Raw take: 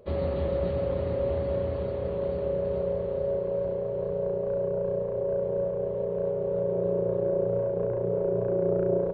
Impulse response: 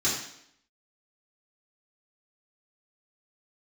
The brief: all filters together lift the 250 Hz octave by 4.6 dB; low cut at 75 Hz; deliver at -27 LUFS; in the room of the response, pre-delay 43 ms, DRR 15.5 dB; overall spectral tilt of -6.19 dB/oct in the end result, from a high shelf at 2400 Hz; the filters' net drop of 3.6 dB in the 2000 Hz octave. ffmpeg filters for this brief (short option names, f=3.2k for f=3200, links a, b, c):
-filter_complex "[0:a]highpass=75,equalizer=f=250:t=o:g=8.5,equalizer=f=2k:t=o:g=-7.5,highshelf=f=2.4k:g=5.5,asplit=2[a][b];[1:a]atrim=start_sample=2205,adelay=43[c];[b][c]afir=irnorm=-1:irlink=0,volume=-26dB[d];[a][d]amix=inputs=2:normalize=0,volume=-0.5dB"